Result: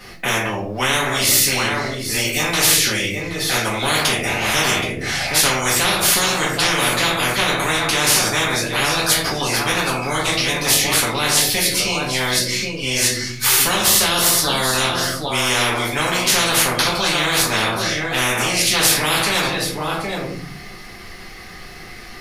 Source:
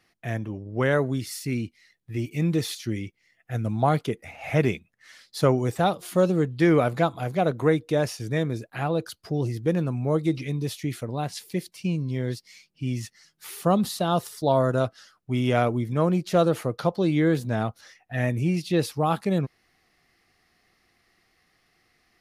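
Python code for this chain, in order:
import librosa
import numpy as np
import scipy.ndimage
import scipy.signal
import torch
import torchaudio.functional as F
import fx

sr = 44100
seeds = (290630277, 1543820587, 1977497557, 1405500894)

y = x + 10.0 ** (-16.0 / 20.0) * np.pad(x, (int(774 * sr / 1000.0), 0))[:len(x)]
y = fx.room_shoebox(y, sr, seeds[0], volume_m3=30.0, walls='mixed', distance_m=1.1)
y = fx.spectral_comp(y, sr, ratio=10.0)
y = F.gain(torch.from_numpy(y), -2.5).numpy()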